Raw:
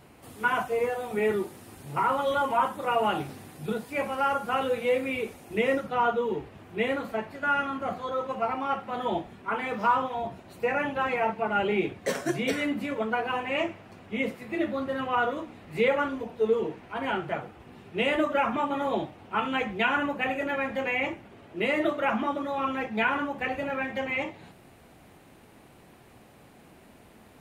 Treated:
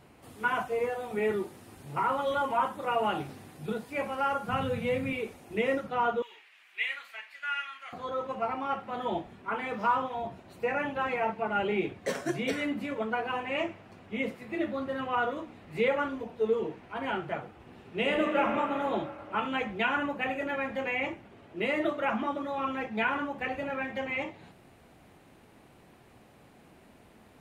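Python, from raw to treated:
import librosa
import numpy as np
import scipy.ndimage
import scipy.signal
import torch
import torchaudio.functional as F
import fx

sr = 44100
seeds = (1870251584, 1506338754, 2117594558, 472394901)

y = fx.low_shelf_res(x, sr, hz=230.0, db=13.0, q=1.5, at=(4.48, 5.13))
y = fx.highpass_res(y, sr, hz=2200.0, q=2.0, at=(6.22, 7.93))
y = fx.reverb_throw(y, sr, start_s=17.55, length_s=0.93, rt60_s=2.9, drr_db=3.5)
y = fx.high_shelf(y, sr, hz=9400.0, db=-5.5)
y = F.gain(torch.from_numpy(y), -3.0).numpy()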